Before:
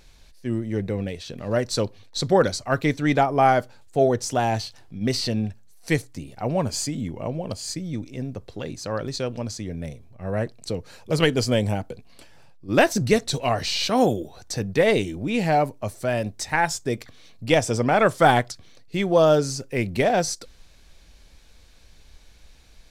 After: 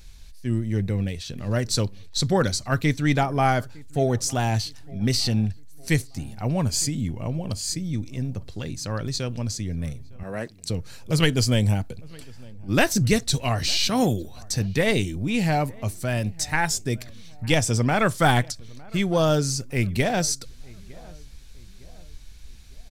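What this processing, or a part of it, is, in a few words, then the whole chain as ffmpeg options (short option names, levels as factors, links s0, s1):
smiley-face EQ: -filter_complex "[0:a]asettb=1/sr,asplit=3[s0][s1][s2];[s0]atrim=end=10.234[s3];[s1]atrim=start=10.23:end=10.7,asetpts=PTS-STARTPTS,afade=t=in:d=0.004:c=qsin,afade=t=out:st=0.466:d=0.004:c=qsin,highpass=270[s4];[s2]atrim=start=10.696[s5];[s3][s4]acrossfade=d=0.004:c1=hsin:c2=qsin[s6];[s6][s5]acrossfade=d=0.004:c1=qsin:c2=hsin,lowshelf=f=160:g=8.5,equalizer=f=540:t=o:w=1.9:g=-6.5,highshelf=f=5400:g=6.5,asplit=2[s7][s8];[s8]adelay=908,lowpass=f=1600:p=1,volume=0.0668,asplit=2[s9][s10];[s10]adelay=908,lowpass=f=1600:p=1,volume=0.47,asplit=2[s11][s12];[s12]adelay=908,lowpass=f=1600:p=1,volume=0.47[s13];[s7][s9][s11][s13]amix=inputs=4:normalize=0"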